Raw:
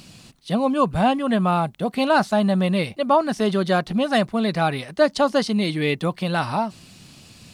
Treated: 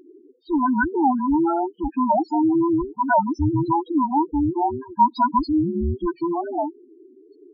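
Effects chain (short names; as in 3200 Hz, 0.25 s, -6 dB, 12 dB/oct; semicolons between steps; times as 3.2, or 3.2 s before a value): band inversion scrambler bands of 500 Hz; 2.12–2.8 notch comb 480 Hz; loudest bins only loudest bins 4; gain +2 dB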